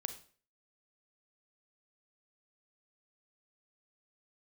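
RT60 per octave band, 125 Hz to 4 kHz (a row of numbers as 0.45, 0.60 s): 0.45, 0.45, 0.45, 0.40, 0.40, 0.40 s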